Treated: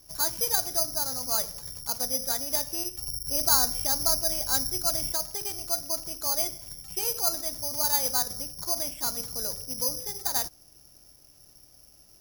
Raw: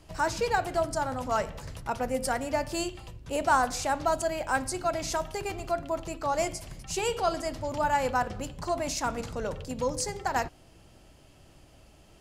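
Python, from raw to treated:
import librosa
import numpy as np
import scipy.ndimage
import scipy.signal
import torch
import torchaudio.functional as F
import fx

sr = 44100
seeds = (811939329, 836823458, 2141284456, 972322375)

y = fx.low_shelf(x, sr, hz=170.0, db=11.0, at=(2.97, 5.12))
y = (np.kron(scipy.signal.resample_poly(y, 1, 8), np.eye(8)[0]) * 8)[:len(y)]
y = y * 10.0 ** (-8.5 / 20.0)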